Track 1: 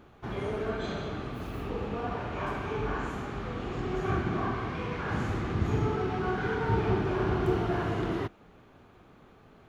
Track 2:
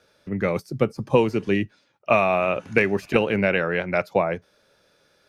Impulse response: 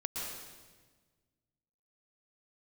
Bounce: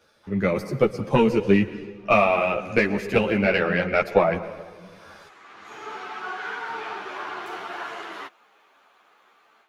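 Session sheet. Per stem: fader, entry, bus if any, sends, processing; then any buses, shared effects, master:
−3.0 dB, 0.00 s, no send, high-pass filter 910 Hz 12 dB per octave; automatic ducking −15 dB, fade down 0.65 s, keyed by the second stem
+2.0 dB, 0.00 s, send −13 dB, tube saturation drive 6 dB, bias 0.35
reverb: on, RT60 1.4 s, pre-delay 108 ms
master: automatic gain control gain up to 10.5 dB; string-ensemble chorus

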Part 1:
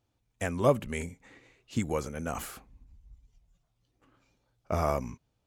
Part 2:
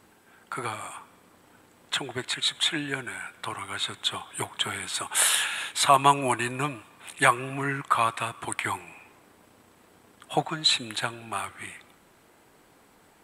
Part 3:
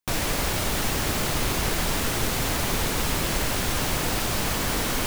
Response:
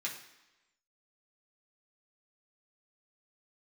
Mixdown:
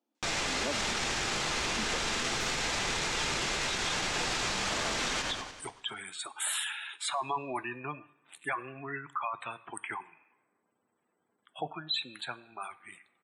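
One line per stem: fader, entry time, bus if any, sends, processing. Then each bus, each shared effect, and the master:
−6.5 dB, 0.00 s, no send, no echo send, Chebyshev high-pass with heavy ripple 210 Hz, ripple 3 dB; low-shelf EQ 420 Hz +10 dB
−17.0 dB, 1.25 s, send −11 dB, no echo send, high-pass filter 140 Hz; leveller curve on the samples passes 2; gate on every frequency bin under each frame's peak −15 dB strong
+0.5 dB, 0.15 s, send −3 dB, echo send −7.5 dB, low-pass filter 7,200 Hz 24 dB per octave; low-shelf EQ 420 Hz −9 dB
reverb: on, RT60 1.0 s, pre-delay 3 ms
echo: repeating echo 97 ms, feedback 56%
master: brickwall limiter −23 dBFS, peak gain reduction 11.5 dB

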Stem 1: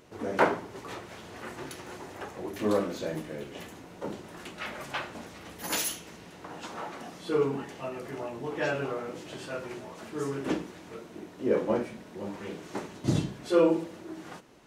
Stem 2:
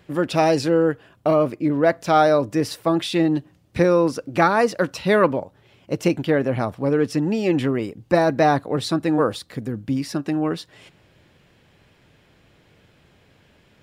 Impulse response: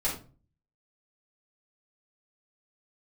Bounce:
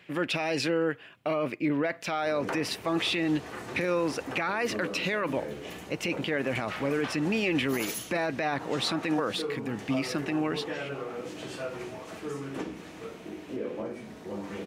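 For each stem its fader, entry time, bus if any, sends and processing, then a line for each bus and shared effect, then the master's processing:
−0.5 dB, 2.10 s, send −11.5 dB, downward compressor 6 to 1, threshold −34 dBFS, peak gain reduction 16 dB
−5.5 dB, 0.00 s, no send, high-pass filter 140 Hz; parametric band 2,400 Hz +13.5 dB 1.2 octaves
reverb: on, RT60 0.35 s, pre-delay 3 ms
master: brickwall limiter −18.5 dBFS, peak gain reduction 14 dB

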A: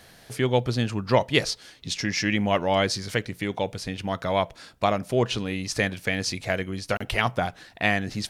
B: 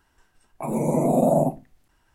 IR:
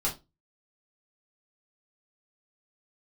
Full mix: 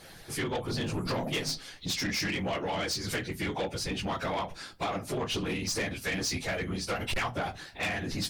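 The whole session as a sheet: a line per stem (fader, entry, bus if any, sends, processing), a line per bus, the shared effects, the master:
+2.5 dB, 0.00 s, send −12 dB, random phases in long frames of 50 ms; downward compressor 12 to 1, threshold −25 dBFS, peak gain reduction 12 dB
−13.0 dB, 0.00 s, send −6.5 dB, all-pass phaser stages 4, 2.7 Hz, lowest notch 620–1,800 Hz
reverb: on, RT60 0.25 s, pre-delay 3 ms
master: harmonic and percussive parts rebalanced harmonic −8 dB; soft clipping −26.5 dBFS, distortion −10 dB

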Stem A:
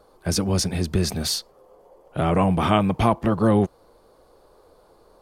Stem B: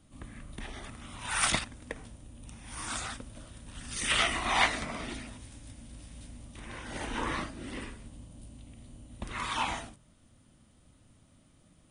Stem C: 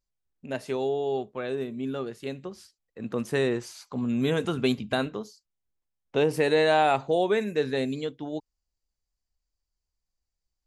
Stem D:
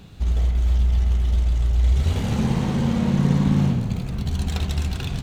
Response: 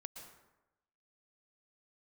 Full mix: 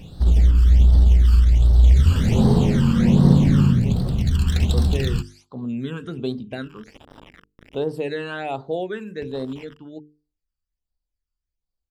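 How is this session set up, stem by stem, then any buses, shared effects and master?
−1.5 dB, 0.00 s, no send, tilt shelving filter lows +8 dB; downward compressor 2 to 1, threshold −32 dBFS, peak gain reduction 13 dB; half-wave rectification
+2.0 dB, 0.00 s, no send, downward compressor 12 to 1, threshold −39 dBFS, peak gain reduction 19.5 dB; bit reduction 6 bits; Savitzky-Golay smoothing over 25 samples
−0.5 dB, 1.60 s, no send, high-shelf EQ 4,800 Hz −10 dB
+2.0 dB, 0.00 s, send −3 dB, no processing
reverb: on, RT60 0.95 s, pre-delay 108 ms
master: mains-hum notches 50/100/150/200/250/300/350/400/450 Hz; all-pass phaser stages 12, 1.3 Hz, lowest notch 640–2,400 Hz

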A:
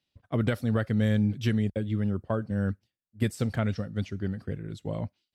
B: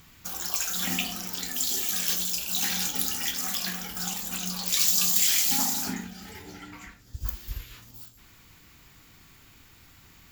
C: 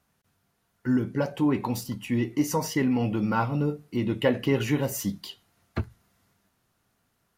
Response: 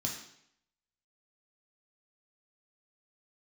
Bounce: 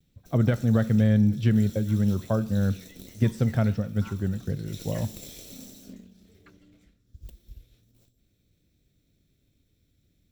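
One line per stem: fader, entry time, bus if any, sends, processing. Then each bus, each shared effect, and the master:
+1.5 dB, 0.00 s, send −15 dB, no processing
−10.0 dB, 0.00 s, no send, lower of the sound and its delayed copy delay 0.52 ms; flat-topped bell 1,300 Hz −15 dB
−12.5 dB, 0.70 s, muted 0:05.12–0:06.12, no send, high-pass filter 1,300 Hz 24 dB per octave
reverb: on, RT60 0.70 s, pre-delay 3 ms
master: high-shelf EQ 3,000 Hz −12 dB; pitch vibrato 0.38 Hz 18 cents

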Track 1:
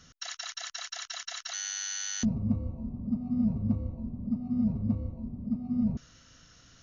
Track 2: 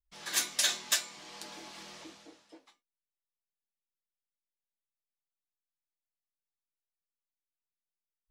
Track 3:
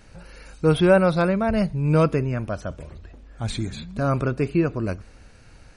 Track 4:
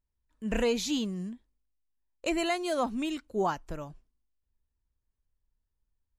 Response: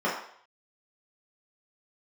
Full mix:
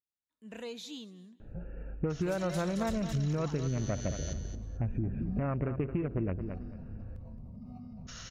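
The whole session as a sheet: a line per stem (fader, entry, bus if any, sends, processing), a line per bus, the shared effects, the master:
−16.0 dB, 2.10 s, no send, echo send −10.5 dB, parametric band 270 Hz −12 dB 1.1 octaves; envelope flattener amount 100%
−15.0 dB, 1.95 s, no send, echo send −6.5 dB, no processing
+2.5 dB, 1.40 s, no send, echo send −12.5 dB, adaptive Wiener filter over 41 samples; Butterworth low-pass 2,800 Hz 72 dB per octave; downward compressor, threshold −24 dBFS, peak gain reduction 12.5 dB
−14.5 dB, 0.00 s, no send, echo send −22 dB, high-pass filter 150 Hz; parametric band 3,700 Hz +9 dB 0.27 octaves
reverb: not used
echo: repeating echo 220 ms, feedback 20%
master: downward compressor 10 to 1, threshold −28 dBFS, peak gain reduction 9.5 dB

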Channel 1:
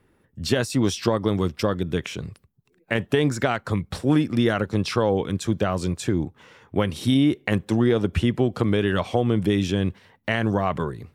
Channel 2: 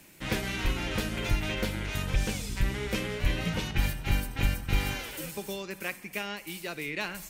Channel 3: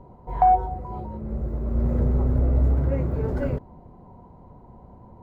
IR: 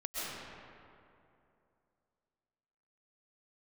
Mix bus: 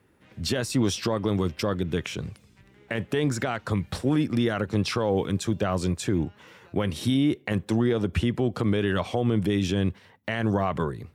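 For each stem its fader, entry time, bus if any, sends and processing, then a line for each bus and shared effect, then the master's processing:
−0.5 dB, 0.00 s, no send, high-pass filter 47 Hz 24 dB per octave; brickwall limiter −14 dBFS, peak gain reduction 8 dB
−18.5 dB, 0.00 s, no send, high-pass filter 100 Hz; high-shelf EQ 3,900 Hz −10.5 dB; downward compressor, threshold −33 dBFS, peak gain reduction 8 dB
muted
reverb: not used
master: no processing

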